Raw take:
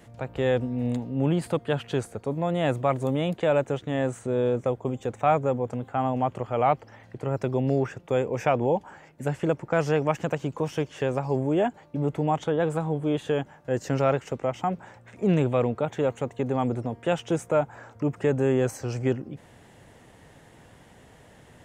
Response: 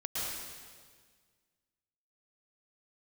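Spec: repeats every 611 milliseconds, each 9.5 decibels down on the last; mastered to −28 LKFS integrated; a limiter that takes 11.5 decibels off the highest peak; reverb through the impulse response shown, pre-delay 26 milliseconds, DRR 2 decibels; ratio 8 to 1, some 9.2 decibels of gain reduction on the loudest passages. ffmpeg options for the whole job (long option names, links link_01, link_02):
-filter_complex "[0:a]acompressor=threshold=-27dB:ratio=8,alimiter=level_in=1dB:limit=-24dB:level=0:latency=1,volume=-1dB,aecho=1:1:611|1222|1833|2444:0.335|0.111|0.0365|0.012,asplit=2[link_01][link_02];[1:a]atrim=start_sample=2205,adelay=26[link_03];[link_02][link_03]afir=irnorm=-1:irlink=0,volume=-6.5dB[link_04];[link_01][link_04]amix=inputs=2:normalize=0,volume=6dB"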